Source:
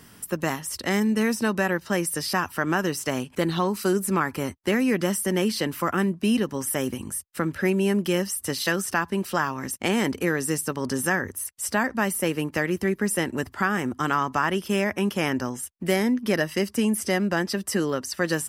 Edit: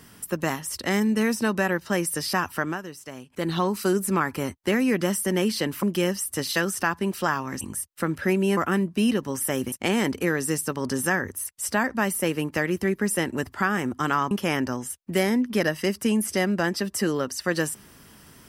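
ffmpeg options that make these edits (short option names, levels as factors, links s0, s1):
-filter_complex "[0:a]asplit=8[s0][s1][s2][s3][s4][s5][s6][s7];[s0]atrim=end=2.81,asetpts=PTS-STARTPTS,afade=t=out:st=2.58:d=0.23:silence=0.237137[s8];[s1]atrim=start=2.81:end=3.3,asetpts=PTS-STARTPTS,volume=0.237[s9];[s2]atrim=start=3.3:end=5.832,asetpts=PTS-STARTPTS,afade=t=in:d=0.23:silence=0.237137[s10];[s3]atrim=start=7.938:end=9.722[s11];[s4]atrim=start=6.978:end=7.942[s12];[s5]atrim=start=5.828:end=6.982[s13];[s6]atrim=start=9.718:end=14.312[s14];[s7]atrim=start=15.038[s15];[s8][s9][s10]concat=n=3:v=0:a=1[s16];[s16][s11]acrossfade=d=0.004:c1=hsin:c2=hsin[s17];[s17][s12]acrossfade=d=0.004:c1=hsin:c2=hsin[s18];[s18][s13]acrossfade=d=0.004:c1=hsin:c2=hsin[s19];[s19][s14]acrossfade=d=0.004:c1=hsin:c2=hsin[s20];[s20][s15]acrossfade=d=0.004:c1=hsin:c2=hsin"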